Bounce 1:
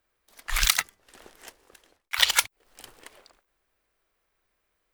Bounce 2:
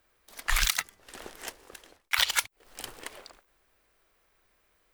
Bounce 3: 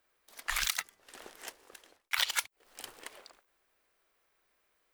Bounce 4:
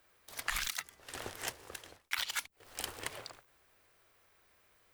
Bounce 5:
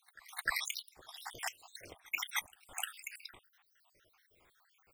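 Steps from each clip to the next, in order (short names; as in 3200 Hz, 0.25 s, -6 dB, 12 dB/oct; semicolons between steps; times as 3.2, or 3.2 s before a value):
compressor 10:1, threshold -28 dBFS, peak gain reduction 15.5 dB; gain +6.5 dB
low shelf 160 Hz -12 dB; gain -5 dB
octaver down 2 oct, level +1 dB; in parallel at -2 dB: limiter -22.5 dBFS, peak gain reduction 10 dB; on the sum: compressor 16:1, threshold -33 dBFS, peak gain reduction 13 dB; gain +1.5 dB
random spectral dropouts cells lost 77%; wow and flutter 130 cents; reverse echo 0.304 s -23 dB; gain +4.5 dB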